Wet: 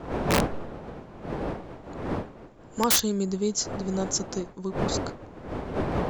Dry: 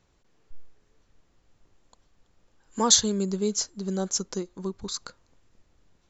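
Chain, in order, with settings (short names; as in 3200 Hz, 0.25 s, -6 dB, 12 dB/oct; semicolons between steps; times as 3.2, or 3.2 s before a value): wind noise 550 Hz -32 dBFS; wrapped overs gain 14 dB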